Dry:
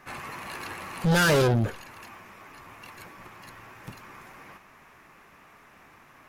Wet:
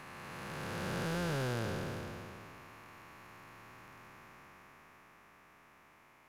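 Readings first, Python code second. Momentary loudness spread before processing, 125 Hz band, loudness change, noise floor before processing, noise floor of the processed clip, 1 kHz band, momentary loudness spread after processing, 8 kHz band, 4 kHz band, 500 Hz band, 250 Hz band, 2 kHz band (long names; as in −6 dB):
24 LU, −12.0 dB, −14.0 dB, −55 dBFS, −63 dBFS, −11.0 dB, 21 LU, −13.5 dB, −12.5 dB, −13.0 dB, −11.0 dB, −13.0 dB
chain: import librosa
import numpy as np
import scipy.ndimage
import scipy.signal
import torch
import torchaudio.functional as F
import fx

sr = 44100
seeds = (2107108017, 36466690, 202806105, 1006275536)

y = fx.spec_blur(x, sr, span_ms=1050.0)
y = y * 10.0 ** (-6.0 / 20.0)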